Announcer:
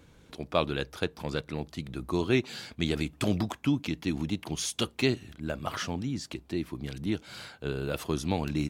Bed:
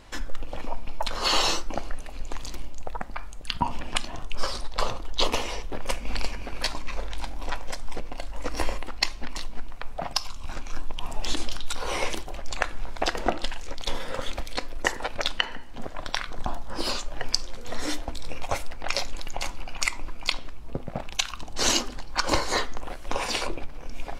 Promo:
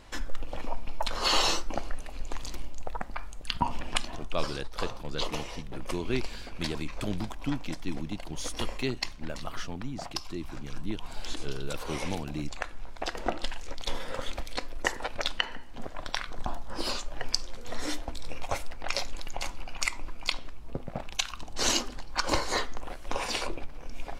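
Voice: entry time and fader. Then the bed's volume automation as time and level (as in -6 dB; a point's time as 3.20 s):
3.80 s, -5.5 dB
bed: 4.01 s -2 dB
4.56 s -8.5 dB
13.00 s -8.5 dB
13.43 s -3.5 dB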